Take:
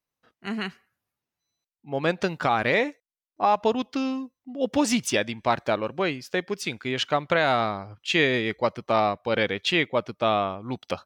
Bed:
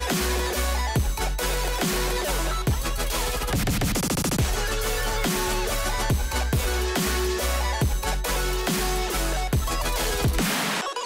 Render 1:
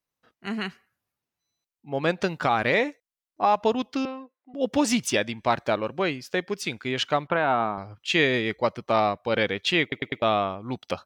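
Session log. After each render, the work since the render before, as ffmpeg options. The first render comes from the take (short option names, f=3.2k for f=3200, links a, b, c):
-filter_complex "[0:a]asettb=1/sr,asplit=3[a][b][c];[a]atrim=end=4.054[d];[b]atrim=start=4.05:end=4.54,asetpts=PTS-STARTPTS,afade=t=in:d=0.004:c=qsin,afade=t=out:st=0.486:d=0.004:c=qsin,highpass=f=350:w=0.5412,highpass=f=350:w=1.3066,equalizer=f=600:t=q:w=4:g=5,equalizer=f=1.5k:t=q:w=4:g=4,equalizer=f=3k:t=q:w=4:g=-7,lowpass=f=3.4k:w=0.5412,lowpass=f=3.4k:w=1.3066[e];[c]atrim=start=4.536[f];[d][e]acrossfade=d=0.004:c1=hsin:c2=qsin[g];[g][f]acrossfade=d=0.004:c1=qsin:c2=hsin,asettb=1/sr,asplit=3[h][i][j];[h]atrim=end=7.274[k];[i]atrim=start=7.27:end=7.78,asetpts=PTS-STARTPTS,afade=t=in:d=0.004:c=qsin,afade=t=out:st=0.506:d=0.004:c=qsin,highpass=140,equalizer=f=550:t=q:w=4:g=-5,equalizer=f=900:t=q:w=4:g=4,equalizer=f=2k:t=q:w=4:g=-9,lowpass=f=2.6k:w=0.5412,lowpass=f=2.6k:w=1.3066[l];[j]atrim=start=7.776[m];[k][l]acrossfade=d=0.004:c1=hsin:c2=qsin[n];[n][m]acrossfade=d=0.004:c1=qsin:c2=hsin,asplit=5[o][p][q][r][s];[o]atrim=end=9.922[t];[p]atrim=start=9.818:end=9.922[u];[q]atrim=start=9.818:end=9.922[v];[r]atrim=start=9.818:end=9.922[w];[s]atrim=start=10.218[x];[t][u]acrossfade=d=0.004:c1=hsin:c2=hsin[y];[y][v]acrossfade=d=0.004:c1=hsin:c2=hsin[z];[z][w]acrossfade=d=0.004:c1=hsin:c2=hsin[aa];[aa][x]acrossfade=d=0.004:c1=hsin:c2=hsin"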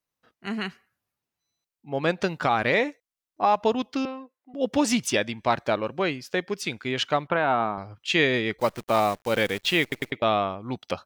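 -filter_complex "[0:a]asplit=3[a][b][c];[a]afade=t=out:st=8.58:d=0.02[d];[b]acrusher=bits=7:dc=4:mix=0:aa=0.000001,afade=t=in:st=8.58:d=0.02,afade=t=out:st=10.1:d=0.02[e];[c]afade=t=in:st=10.1:d=0.02[f];[d][e][f]amix=inputs=3:normalize=0"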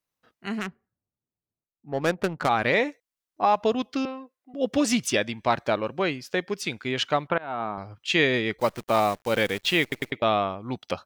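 -filter_complex "[0:a]asettb=1/sr,asplit=3[a][b][c];[a]atrim=end=0.594[d];[b]atrim=start=0.59:end=2.49,asetpts=PTS-STARTPTS,afade=t=in:d=0.004:c=qsin,afade=t=out:st=1.896:d=0.004:c=qsin,adynamicsmooth=sensitivity=2.5:basefreq=560[e];[c]atrim=start=2.486[f];[d][e]acrossfade=d=0.004:c1=hsin:c2=qsin[g];[g][f]acrossfade=d=0.004:c1=qsin:c2=hsin,asettb=1/sr,asplit=3[h][i][j];[h]atrim=end=3.664[k];[i]atrim=start=3.66:end=5.2,asetpts=PTS-STARTPTS,afade=t=in:d=0.004:c=qsin,afade=t=out:st=1.536:d=0.004:c=qsin,asuperstop=centerf=900:order=4:qfactor=7.4[l];[j]atrim=start=5.196[m];[k][l]acrossfade=d=0.004:c1=hsin:c2=qsin[n];[n][m]acrossfade=d=0.004:c1=qsin:c2=hsin,asplit=2[o][p];[o]atrim=end=7.38,asetpts=PTS-STARTPTS,afade=t=out:st=7.376:d=0.004:c=hsin:silence=0.0630957[q];[p]atrim=start=7.38,asetpts=PTS-STARTPTS,afade=t=in:d=0.45:silence=0.0630957[r];[q][r]concat=n=2:v=0:a=1"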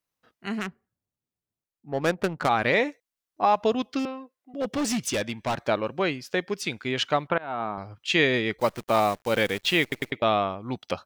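-filter_complex "[0:a]asettb=1/sr,asplit=3[a][b][c];[a]atrim=end=3.994[d];[b]atrim=start=3.99:end=5.55,asetpts=PTS-STARTPTS,afade=t=in:d=0.004:c=qsin,afade=t=out:st=1.556:d=0.004:c=qsin,volume=23dB,asoftclip=hard,volume=-23dB[e];[c]atrim=start=5.546[f];[d][e]acrossfade=d=0.004:c1=hsin:c2=qsin[g];[g][f]acrossfade=d=0.004:c1=qsin:c2=hsin"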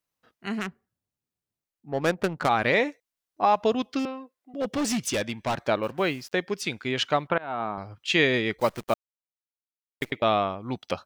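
-filter_complex "[0:a]asettb=1/sr,asplit=3[a][b][c];[a]atrim=end=5.834[d];[b]atrim=start=5.83:end=6.33,asetpts=PTS-STARTPTS,afade=t=in:d=0.004:c=qsin,afade=t=out:st=0.496:d=0.004:c=qsin,acrusher=bits=7:mix=0:aa=0.5[e];[c]atrim=start=6.326[f];[d][e]acrossfade=d=0.004:c1=hsin:c2=qsin[g];[g][f]acrossfade=d=0.004:c1=qsin:c2=hsin,asplit=3[h][i][j];[h]atrim=end=8.94,asetpts=PTS-STARTPTS,afade=t=out:st=8.936:d=0.004:c=hsin[k];[i]atrim=start=8.94:end=10.01,asetpts=PTS-STARTPTS,volume=0[l];[j]atrim=start=10.01,asetpts=PTS-STARTPTS,afade=t=in:d=0.004:c=hsin[m];[k][l][m]concat=n=3:v=0:a=1"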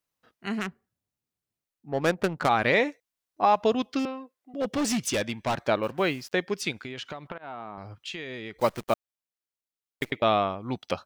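-filter_complex "[0:a]asplit=3[a][b][c];[a]afade=t=out:st=6.71:d=0.02[d];[b]acompressor=threshold=-33dB:ratio=12:attack=3.2:release=140:knee=1:detection=peak,afade=t=in:st=6.71:d=0.02,afade=t=out:st=8.55:d=0.02[e];[c]afade=t=in:st=8.55:d=0.02[f];[d][e][f]amix=inputs=3:normalize=0"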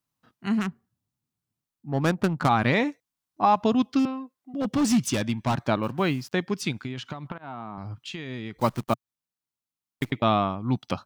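-af "equalizer=f=125:t=o:w=1:g=9,equalizer=f=250:t=o:w=1:g=6,equalizer=f=500:t=o:w=1:g=-6,equalizer=f=1k:t=o:w=1:g=4,equalizer=f=2k:t=o:w=1:g=-3"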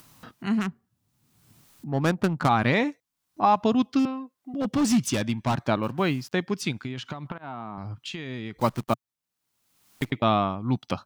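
-af "acompressor=mode=upward:threshold=-32dB:ratio=2.5"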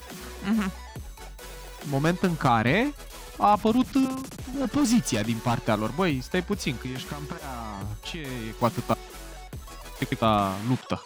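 -filter_complex "[1:a]volume=-16dB[a];[0:a][a]amix=inputs=2:normalize=0"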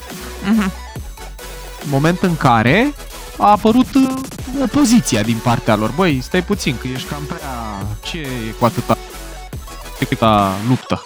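-af "volume=10.5dB,alimiter=limit=-1dB:level=0:latency=1"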